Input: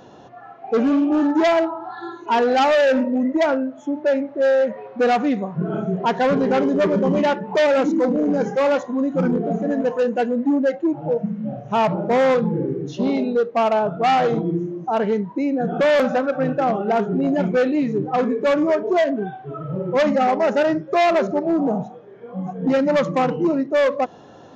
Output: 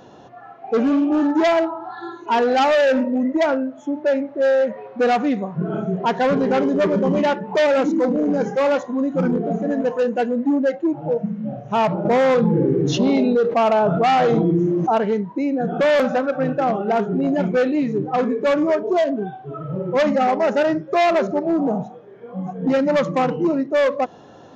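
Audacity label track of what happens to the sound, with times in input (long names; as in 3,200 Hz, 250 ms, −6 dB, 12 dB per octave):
12.050000	14.980000	envelope flattener amount 70%
18.790000	19.530000	parametric band 1,900 Hz −5.5 dB 0.86 octaves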